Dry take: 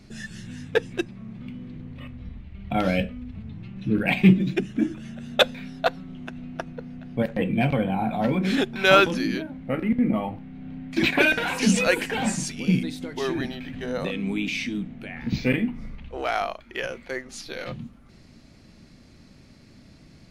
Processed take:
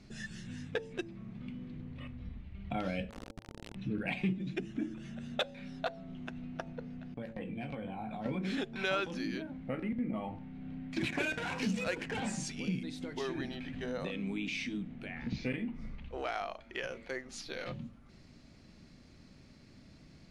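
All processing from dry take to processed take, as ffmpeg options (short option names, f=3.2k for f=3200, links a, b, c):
-filter_complex "[0:a]asettb=1/sr,asplit=3[a][b][c];[a]atrim=end=3.104[d];[b]atrim=start=3.1:end=3.75,asetpts=PTS-STARTPTS,afade=t=in:d=0.004:c=qsin,afade=t=out:st=0.646:d=0.004:c=qsin,equalizer=f=150:w=6.7:g=-5.5,aecho=1:1:6.5:0.3,atrim=end_sample=28665,acrusher=bits=3:dc=4:mix=0:aa=0.000001[e];[c]atrim=start=3.746[f];[d][e]acrossfade=d=0.004:c1=hsin:c2=qsin[g];[g][f]acrossfade=d=0.004:c1=qsin:c2=hsin,asettb=1/sr,asplit=3[h][i][j];[h]atrim=end=7.144[k];[i]atrim=start=7.14:end=8.26,asetpts=PTS-STARTPTS,afade=t=in:d=0.004:c=qsin,afade=t=out:st=1.116:d=0.004:c=qsin,agate=range=-33dB:threshold=-31dB:ratio=3:release=100:detection=peak,acompressor=threshold=-32dB:ratio=4:attack=3.2:release=140:knee=1:detection=peak,asplit=2[l][m];[m]adelay=18,volume=-8.5dB[n];[l][n]amix=inputs=2:normalize=0,atrim=end_sample=49392[o];[j]atrim=start=8.256[p];[k][o]acrossfade=d=0.004:c1=hsin:c2=qsin[q];[q][p]acrossfade=d=0.004:c1=qsin:c2=hsin,asettb=1/sr,asplit=3[r][s][t];[r]atrim=end=10.984[u];[s]atrim=start=10.98:end=12.2,asetpts=PTS-STARTPTS,afade=t=in:d=0.004:c=qsin,afade=t=out:st=1.216:d=0.004:c=qsin,equalizer=f=110:w=1.1:g=9.5,adynamicsmooth=sensitivity=6:basefreq=1.2k[v];[t]atrim=start=12.196[w];[u][v]acrossfade=d=0.004:c1=hsin:c2=qsin[x];[x][w]acrossfade=d=0.004:c1=qsin:c2=hsin,lowpass=8.9k,bandreject=f=111.7:t=h:w=4,bandreject=f=223.4:t=h:w=4,bandreject=f=335.1:t=h:w=4,bandreject=f=446.8:t=h:w=4,bandreject=f=558.5:t=h:w=4,bandreject=f=670.2:t=h:w=4,bandreject=f=781.9:t=h:w=4,bandreject=f=893.6:t=h:w=4,acompressor=threshold=-29dB:ratio=2.5,volume=-6dB"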